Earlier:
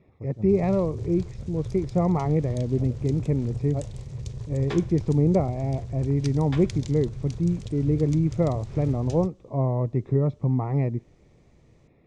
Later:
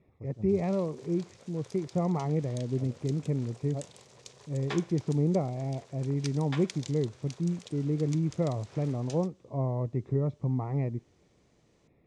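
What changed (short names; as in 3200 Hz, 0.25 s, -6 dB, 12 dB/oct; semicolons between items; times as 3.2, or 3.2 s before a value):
speech -6.0 dB; background: add HPF 620 Hz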